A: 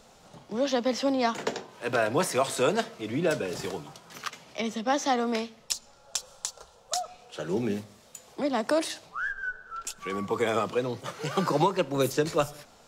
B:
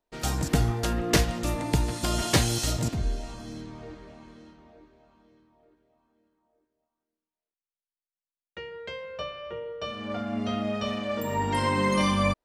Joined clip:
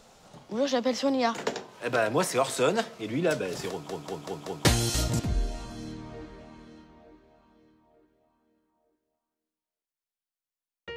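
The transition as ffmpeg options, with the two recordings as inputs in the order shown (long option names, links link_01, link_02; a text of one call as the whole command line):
ffmpeg -i cue0.wav -i cue1.wav -filter_complex "[0:a]apad=whole_dur=10.96,atrim=end=10.96,asplit=5[link_01][link_02][link_03][link_04][link_05];[link_01]atrim=end=3.892[link_06];[link_02]atrim=start=3.698:end=3.892[link_07];[link_03]atrim=start=3.698:end=3.892[link_08];[link_04]atrim=start=3.698:end=3.892[link_09];[link_05]atrim=start=3.698:end=3.892[link_10];[1:a]atrim=start=2.338:end=8.65[link_11];[link_06][link_07]acrossfade=duration=0.004:curve1=hsin:curve2=hsin[link_12];[link_12][link_08]acrossfade=duration=0.004:curve1=hsin:curve2=hsin[link_13];[link_13][link_09]acrossfade=duration=0.004:curve1=hsin:curve2=hsin[link_14];[link_14][link_10]acrossfade=duration=0.004:curve1=hsin:curve2=hsin[link_15];[link_15][link_11]acrossfade=duration=0.004:curve1=hsin:curve2=hsin" out.wav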